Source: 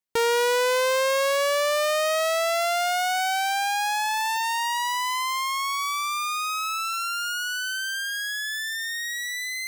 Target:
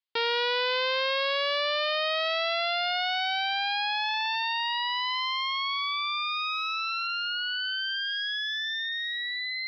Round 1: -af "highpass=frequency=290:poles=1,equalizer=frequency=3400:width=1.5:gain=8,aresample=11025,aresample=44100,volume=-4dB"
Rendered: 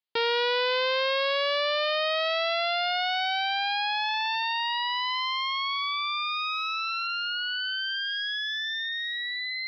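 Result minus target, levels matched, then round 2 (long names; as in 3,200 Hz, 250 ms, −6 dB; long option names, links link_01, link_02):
250 Hz band +4.0 dB
-af "highpass=frequency=650:poles=1,equalizer=frequency=3400:width=1.5:gain=8,aresample=11025,aresample=44100,volume=-4dB"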